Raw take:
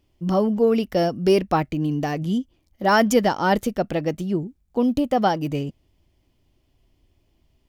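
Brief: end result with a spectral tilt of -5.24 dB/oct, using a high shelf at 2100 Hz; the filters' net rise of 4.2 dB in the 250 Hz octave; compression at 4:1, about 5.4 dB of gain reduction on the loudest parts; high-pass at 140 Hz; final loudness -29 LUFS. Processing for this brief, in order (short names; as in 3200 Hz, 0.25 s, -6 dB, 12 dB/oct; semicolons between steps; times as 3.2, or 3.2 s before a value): HPF 140 Hz; bell 250 Hz +6 dB; high shelf 2100 Hz -4.5 dB; compressor 4:1, threshold -17 dBFS; gain -6 dB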